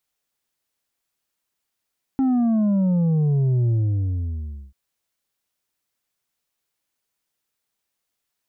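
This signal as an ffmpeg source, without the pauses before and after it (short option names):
-f lavfi -i "aevalsrc='0.141*clip((2.54-t)/1.04,0,1)*tanh(1.78*sin(2*PI*270*2.54/log(65/270)*(exp(log(65/270)*t/2.54)-1)))/tanh(1.78)':d=2.54:s=44100"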